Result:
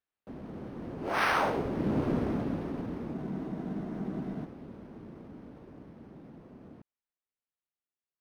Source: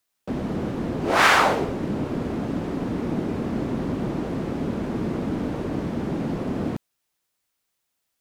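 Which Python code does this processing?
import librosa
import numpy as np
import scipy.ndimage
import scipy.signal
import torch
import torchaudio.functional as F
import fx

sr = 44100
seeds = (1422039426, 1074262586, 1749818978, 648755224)

y = fx.doppler_pass(x, sr, speed_mps=7, closest_m=2.4, pass_at_s=2.07)
y = fx.spec_freeze(y, sr, seeds[0], at_s=3.16, hold_s=1.28)
y = np.interp(np.arange(len(y)), np.arange(len(y))[::6], y[::6])
y = F.gain(torch.from_numpy(y), -1.5).numpy()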